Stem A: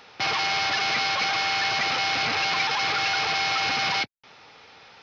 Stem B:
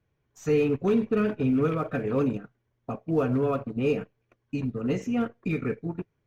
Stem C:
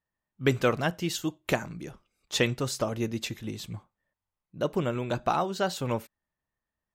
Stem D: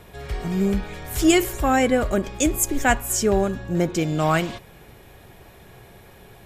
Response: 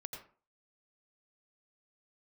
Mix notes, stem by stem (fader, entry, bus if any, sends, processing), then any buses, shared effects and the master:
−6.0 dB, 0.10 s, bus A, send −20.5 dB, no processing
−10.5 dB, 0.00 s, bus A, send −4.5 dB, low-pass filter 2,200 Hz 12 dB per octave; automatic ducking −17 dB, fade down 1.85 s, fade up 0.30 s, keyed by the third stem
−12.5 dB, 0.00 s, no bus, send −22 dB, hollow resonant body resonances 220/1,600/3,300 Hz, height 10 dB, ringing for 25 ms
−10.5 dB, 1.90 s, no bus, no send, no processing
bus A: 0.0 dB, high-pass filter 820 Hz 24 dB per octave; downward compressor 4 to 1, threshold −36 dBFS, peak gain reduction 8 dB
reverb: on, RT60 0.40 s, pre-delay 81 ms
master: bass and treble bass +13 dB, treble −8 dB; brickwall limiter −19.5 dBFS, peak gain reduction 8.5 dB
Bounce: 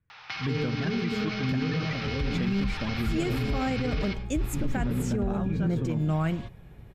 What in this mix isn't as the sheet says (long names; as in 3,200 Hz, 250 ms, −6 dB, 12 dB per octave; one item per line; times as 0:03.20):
stem A −6.0 dB → +3.5 dB
stem B −10.5 dB → −3.0 dB